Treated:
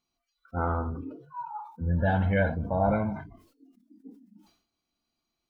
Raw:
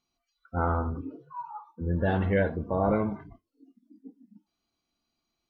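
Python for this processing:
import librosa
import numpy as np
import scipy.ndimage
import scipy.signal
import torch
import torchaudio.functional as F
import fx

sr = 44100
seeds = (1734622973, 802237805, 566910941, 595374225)

y = fx.comb(x, sr, ms=1.3, depth=0.71, at=(1.26, 3.26))
y = fx.sustainer(y, sr, db_per_s=100.0)
y = F.gain(torch.from_numpy(y), -1.5).numpy()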